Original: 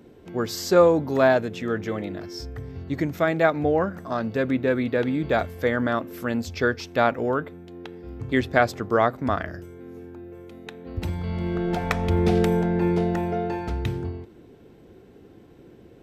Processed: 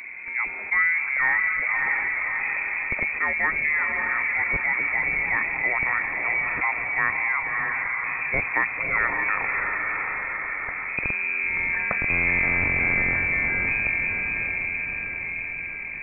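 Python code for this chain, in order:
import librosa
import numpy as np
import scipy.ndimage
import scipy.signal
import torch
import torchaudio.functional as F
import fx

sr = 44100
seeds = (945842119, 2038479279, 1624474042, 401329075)

p1 = fx.rattle_buzz(x, sr, strikes_db=-22.0, level_db=-9.0)
p2 = p1 + fx.echo_diffused(p1, sr, ms=612, feedback_pct=46, wet_db=-5, dry=0)
p3 = fx.freq_invert(p2, sr, carrier_hz=2500)
p4 = fx.env_flatten(p3, sr, amount_pct=50)
y = p4 * librosa.db_to_amplitude(-7.0)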